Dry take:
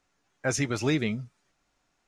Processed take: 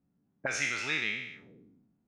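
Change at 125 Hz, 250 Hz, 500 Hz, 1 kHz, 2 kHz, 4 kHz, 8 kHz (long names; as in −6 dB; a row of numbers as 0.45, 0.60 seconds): −17.5, −16.5, −11.5, −3.5, +3.5, +0.5, −4.5 decibels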